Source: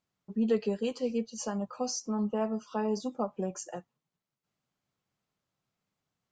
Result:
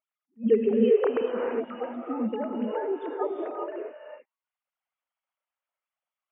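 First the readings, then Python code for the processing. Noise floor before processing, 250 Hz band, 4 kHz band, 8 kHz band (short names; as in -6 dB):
under -85 dBFS, +2.5 dB, n/a, under -40 dB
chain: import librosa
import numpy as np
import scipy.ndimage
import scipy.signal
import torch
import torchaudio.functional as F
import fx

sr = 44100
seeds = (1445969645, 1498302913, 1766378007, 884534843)

y = fx.sine_speech(x, sr)
y = fx.rev_gated(y, sr, seeds[0], gate_ms=440, shape='rising', drr_db=0.0)
y = fx.attack_slew(y, sr, db_per_s=350.0)
y = F.gain(torch.from_numpy(y), 3.0).numpy()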